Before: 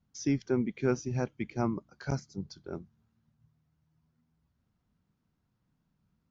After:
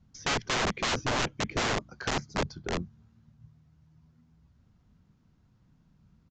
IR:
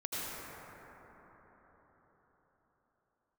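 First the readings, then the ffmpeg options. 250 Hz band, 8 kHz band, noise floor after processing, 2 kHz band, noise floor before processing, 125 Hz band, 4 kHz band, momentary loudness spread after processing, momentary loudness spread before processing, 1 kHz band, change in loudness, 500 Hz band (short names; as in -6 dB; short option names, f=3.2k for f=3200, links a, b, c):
-4.5 dB, n/a, -66 dBFS, +13.0 dB, -78 dBFS, -2.0 dB, +19.0 dB, 7 LU, 13 LU, +10.5 dB, +3.0 dB, 0.0 dB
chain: -filter_complex "[0:a]lowshelf=f=190:g=7.5,acrossover=split=2700[a][b];[a]aeval=exprs='(mod(33.5*val(0)+1,2)-1)/33.5':c=same[c];[b]acompressor=threshold=-58dB:ratio=6[d];[c][d]amix=inputs=2:normalize=0,aresample=16000,aresample=44100,volume=8dB"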